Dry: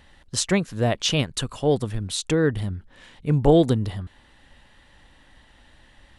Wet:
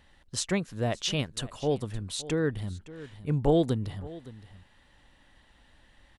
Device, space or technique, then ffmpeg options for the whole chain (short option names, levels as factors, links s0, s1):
ducked delay: -filter_complex "[0:a]asplit=3[s0][s1][s2];[s1]adelay=565,volume=0.376[s3];[s2]apad=whole_len=297470[s4];[s3][s4]sidechaincompress=threshold=0.0282:ratio=5:attack=28:release=1010[s5];[s0][s5]amix=inputs=2:normalize=0,volume=0.447"